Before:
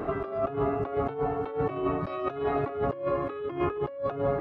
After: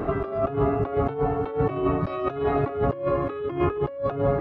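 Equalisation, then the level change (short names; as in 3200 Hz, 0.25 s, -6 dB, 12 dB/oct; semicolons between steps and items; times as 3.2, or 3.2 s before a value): low shelf 200 Hz +7 dB; +3.0 dB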